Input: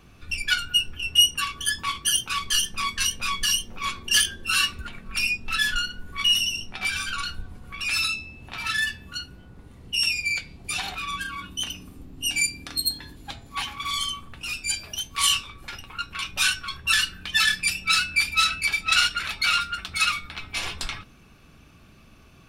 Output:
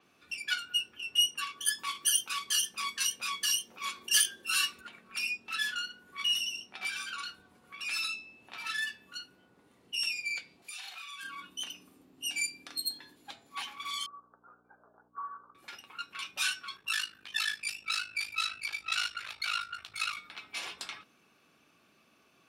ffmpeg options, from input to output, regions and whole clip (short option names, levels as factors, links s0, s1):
-filter_complex "[0:a]asettb=1/sr,asplit=3[s0][s1][s2];[s0]atrim=end=1.614[s3];[s1]atrim=start=1.61:end=4.81,asetpts=PTS-STARTPTS,afade=t=in:d=0.004:c=qsin,afade=t=out:st=3.196:d=0.004:c=qsin,highshelf=f=6700:g=10.5,acompressor=mode=upward:threshold=0.0224:ratio=2.5:attack=3.2:release=140:knee=2.83:detection=peak[s4];[s2]atrim=start=4.806[s5];[s3][s4]acrossfade=d=0.004:c1=hsin:c2=qsin[s6];[s6][s5]acrossfade=d=0.004:c1=qsin:c2=hsin,asettb=1/sr,asplit=3[s7][s8][s9];[s7]atrim=end=10.624[s10];[s8]atrim=start=10.62:end=11.23,asetpts=PTS-STARTPTS,afade=t=in:d=0.004:c=qsin,afade=t=out:st=0.606:d=0.004:c=qsin,tiltshelf=f=810:g=-9.5,acompressor=threshold=0.0178:ratio=4:attack=3.2:release=140:knee=1:detection=peak,asplit=2[s11][s12];[s12]adelay=39,volume=0.562[s13];[s11][s13]amix=inputs=2:normalize=0,atrim=end_sample=26901[s14];[s9]atrim=start=11.226[s15];[s10][s14]acrossfade=d=0.004:c1=hsin:c2=qsin[s16];[s16][s15]acrossfade=d=0.004:c1=qsin:c2=hsin,asettb=1/sr,asplit=3[s17][s18][s19];[s17]atrim=end=14.064[s20];[s18]atrim=start=14.06:end=15.55,asetpts=PTS-STARTPTS,afade=t=in:d=0.004:c=qsin,afade=t=out:st=1.486:d=0.004:c=qsin,agate=range=0.0224:threshold=0.0112:ratio=3:release=100:detection=peak,asuperpass=centerf=750:order=20:qfactor=0.66,aeval=exprs='val(0)+0.00355*(sin(2*PI*60*n/s)+sin(2*PI*2*60*n/s)/2+sin(2*PI*3*60*n/s)/3+sin(2*PI*4*60*n/s)/4+sin(2*PI*5*60*n/s)/5)':c=same[s21];[s19]atrim=start=15.546[s22];[s20][s21]acrossfade=d=0.004:c1=hsin:c2=qsin[s23];[s23][s22]acrossfade=d=0.004:c1=qsin:c2=hsin,asettb=1/sr,asplit=3[s24][s25][s26];[s24]atrim=end=16.764[s27];[s25]atrim=start=16.76:end=20.17,asetpts=PTS-STARTPTS,afade=t=in:d=0.004:c=qsin,afade=t=out:st=3.406:d=0.004:c=qsin,asubboost=boost=8.5:cutoff=81,aeval=exprs='val(0)*sin(2*PI*26*n/s)':c=same,asplit=2[s28][s29];[s29]adelay=16,volume=0.251[s30];[s28][s30]amix=inputs=2:normalize=0,atrim=end_sample=150381[s31];[s26]atrim=start=20.166[s32];[s27][s31]acrossfade=d=0.004:c1=hsin:c2=qsin[s33];[s33][s32]acrossfade=d=0.004:c1=qsin:c2=hsin,highpass=300,adynamicequalizer=threshold=0.0141:dfrequency=7400:dqfactor=0.7:tfrequency=7400:tqfactor=0.7:attack=5:release=100:ratio=0.375:range=2:mode=cutabove:tftype=highshelf,volume=0.355"